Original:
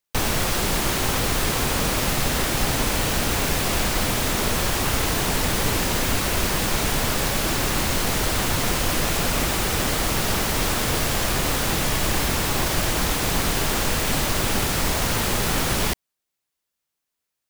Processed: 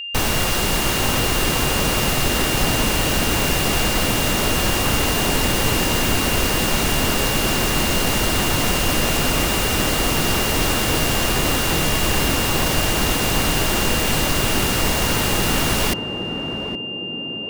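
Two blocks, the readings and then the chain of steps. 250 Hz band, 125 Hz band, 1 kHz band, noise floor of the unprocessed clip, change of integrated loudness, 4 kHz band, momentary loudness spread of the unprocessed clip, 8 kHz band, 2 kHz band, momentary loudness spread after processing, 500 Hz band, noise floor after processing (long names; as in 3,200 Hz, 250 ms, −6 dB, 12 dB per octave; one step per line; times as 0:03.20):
+4.5 dB, +3.0 dB, +3.0 dB, −82 dBFS, +3.5 dB, +5.0 dB, 0 LU, +2.5 dB, +4.0 dB, 1 LU, +4.0 dB, −27 dBFS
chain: steady tone 2,800 Hz −30 dBFS
feedback echo with a band-pass in the loop 817 ms, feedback 68%, band-pass 300 Hz, level −4 dB
level +2.5 dB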